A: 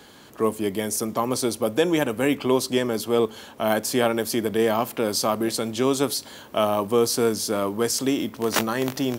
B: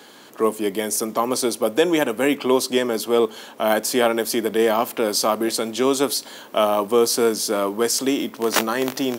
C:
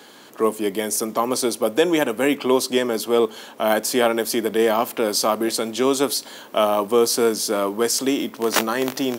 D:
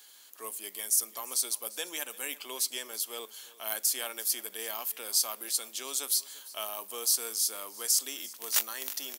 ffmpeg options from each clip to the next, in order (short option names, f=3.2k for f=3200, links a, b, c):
-af "highpass=240,volume=3.5dB"
-af anull
-af "aderivative,aecho=1:1:344:0.1,volume=-3dB"